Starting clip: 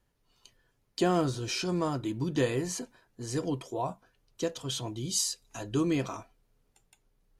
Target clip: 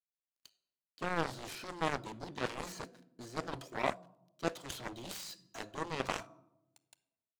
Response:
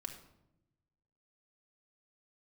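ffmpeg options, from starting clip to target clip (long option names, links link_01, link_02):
-filter_complex "[0:a]acrossover=split=2700[link_01][link_02];[link_02]acompressor=threshold=-50dB:ratio=4:attack=1:release=60[link_03];[link_01][link_03]amix=inputs=2:normalize=0,highshelf=frequency=6400:gain=7,areverse,acompressor=threshold=-38dB:ratio=5,areverse,highpass=frequency=120:width=0.5412,highpass=frequency=120:width=1.3066,equalizer=frequency=640:width_type=q:width=4:gain=8,equalizer=frequency=1400:width_type=q:width=4:gain=4,equalizer=frequency=4200:width_type=q:width=4:gain=7,lowpass=frequency=9500:width=0.5412,lowpass=frequency=9500:width=1.3066,aeval=exprs='sgn(val(0))*max(abs(val(0))-0.00158,0)':channel_layout=same,asplit=2[link_04][link_05];[1:a]atrim=start_sample=2205,lowshelf=frequency=120:gain=-11.5[link_06];[link_05][link_06]afir=irnorm=-1:irlink=0,volume=-5dB[link_07];[link_04][link_07]amix=inputs=2:normalize=0,aeval=exprs='0.0841*(cos(1*acos(clip(val(0)/0.0841,-1,1)))-cos(1*PI/2))+0.0119*(cos(3*acos(clip(val(0)/0.0841,-1,1)))-cos(3*PI/2))+0.0133*(cos(7*acos(clip(val(0)/0.0841,-1,1)))-cos(7*PI/2))':channel_layout=same,volume=5.5dB"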